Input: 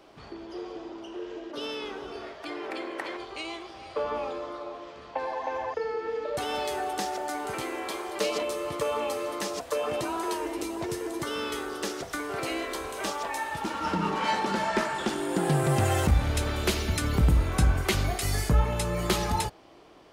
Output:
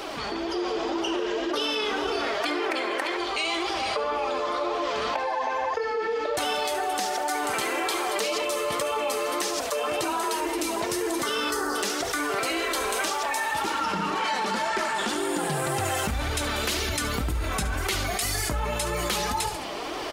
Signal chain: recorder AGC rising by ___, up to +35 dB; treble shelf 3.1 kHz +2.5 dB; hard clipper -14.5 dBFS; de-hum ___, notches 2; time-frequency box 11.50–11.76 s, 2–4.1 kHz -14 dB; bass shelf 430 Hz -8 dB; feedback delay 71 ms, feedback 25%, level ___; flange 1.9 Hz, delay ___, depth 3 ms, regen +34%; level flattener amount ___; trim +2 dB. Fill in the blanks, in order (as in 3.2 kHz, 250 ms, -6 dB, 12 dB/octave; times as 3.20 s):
15 dB/s, 183.2 Hz, -15.5 dB, 2.1 ms, 70%